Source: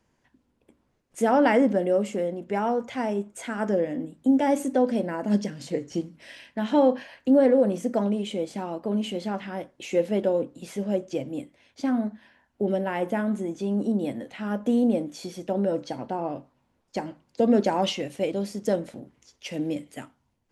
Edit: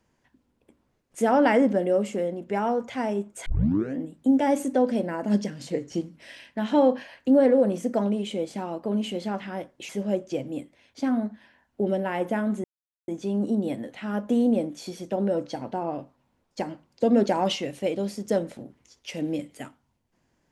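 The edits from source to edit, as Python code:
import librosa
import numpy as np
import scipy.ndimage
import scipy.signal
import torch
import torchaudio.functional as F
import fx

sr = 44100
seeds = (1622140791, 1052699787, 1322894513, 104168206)

y = fx.edit(x, sr, fx.tape_start(start_s=3.46, length_s=0.51),
    fx.cut(start_s=9.89, length_s=0.81),
    fx.insert_silence(at_s=13.45, length_s=0.44), tone=tone)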